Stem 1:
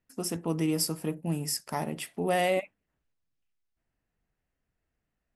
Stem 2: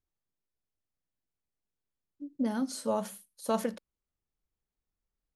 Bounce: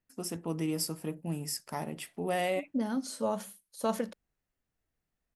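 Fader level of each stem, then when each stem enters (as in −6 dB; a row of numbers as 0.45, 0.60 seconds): −4.5, −1.0 decibels; 0.00, 0.35 seconds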